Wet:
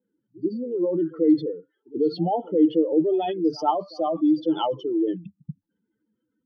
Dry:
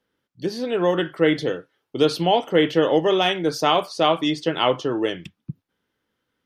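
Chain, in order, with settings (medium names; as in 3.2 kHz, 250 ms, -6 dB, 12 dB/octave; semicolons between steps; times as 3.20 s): spectral contrast enhancement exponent 2.9; small resonant body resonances 210/310/880 Hz, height 12 dB, ringing for 60 ms; pre-echo 86 ms -22.5 dB; trim -7 dB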